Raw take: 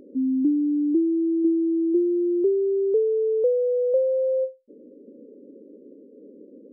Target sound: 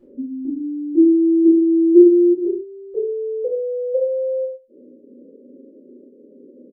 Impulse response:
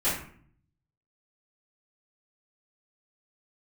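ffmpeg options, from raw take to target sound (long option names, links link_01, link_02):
-filter_complex "[0:a]asplit=3[link_01][link_02][link_03];[link_01]afade=type=out:start_time=0.96:duration=0.02[link_04];[link_02]equalizer=frequency=330:width_type=o:width=1.4:gain=11.5,afade=type=in:start_time=0.96:duration=0.02,afade=type=out:start_time=2.32:duration=0.02[link_05];[link_03]afade=type=in:start_time=2.32:duration=0.02[link_06];[link_04][link_05][link_06]amix=inputs=3:normalize=0,asplit=2[link_07][link_08];[link_08]adelay=37,volume=-7dB[link_09];[link_07][link_09]amix=inputs=2:normalize=0[link_10];[1:a]atrim=start_sample=2205,afade=type=out:start_time=0.22:duration=0.01,atrim=end_sample=10143[link_11];[link_10][link_11]afir=irnorm=-1:irlink=0,volume=-11.5dB"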